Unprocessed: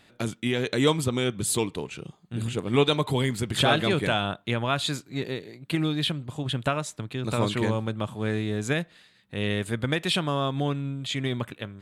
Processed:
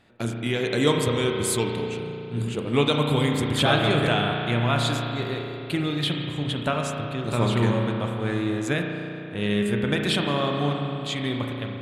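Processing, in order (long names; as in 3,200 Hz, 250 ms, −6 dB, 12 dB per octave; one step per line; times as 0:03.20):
spring reverb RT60 3.4 s, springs 34 ms, chirp 55 ms, DRR 1 dB
one half of a high-frequency compander decoder only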